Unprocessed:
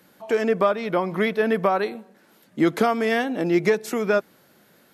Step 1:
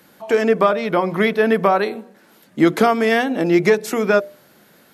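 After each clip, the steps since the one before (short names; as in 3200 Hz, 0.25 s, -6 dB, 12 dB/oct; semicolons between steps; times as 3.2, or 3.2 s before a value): notches 60/120/180/240/300/360/420/480/540/600 Hz; gain +5.5 dB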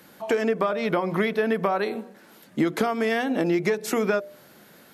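compressor, threshold -20 dBFS, peak gain reduction 11 dB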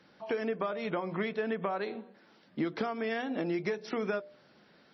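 gain -9 dB; MP3 24 kbps 22050 Hz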